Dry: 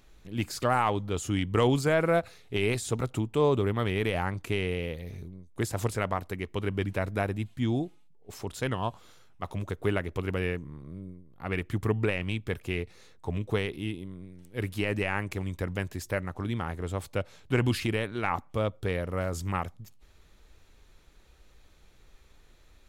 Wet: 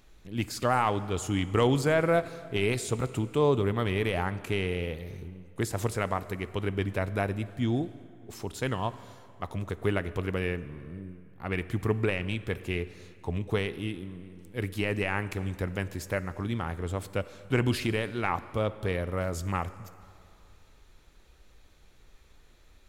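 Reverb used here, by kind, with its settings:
dense smooth reverb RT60 2.6 s, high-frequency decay 0.75×, DRR 14.5 dB

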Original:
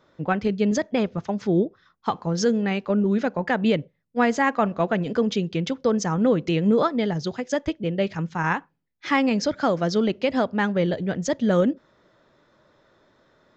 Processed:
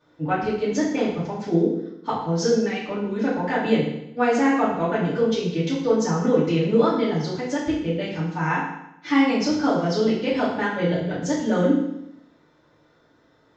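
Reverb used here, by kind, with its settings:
feedback delay network reverb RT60 0.82 s, low-frequency decay 1.1×, high-frequency decay 0.95×, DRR −9 dB
level −9 dB

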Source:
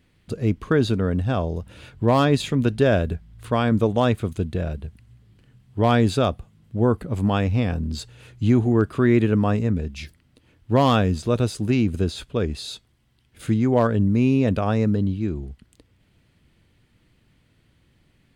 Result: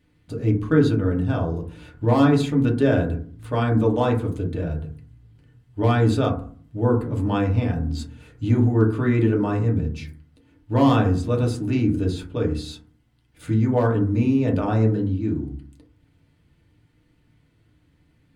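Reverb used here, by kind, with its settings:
feedback delay network reverb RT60 0.46 s, low-frequency decay 1.45×, high-frequency decay 0.3×, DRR −1.5 dB
level −6 dB

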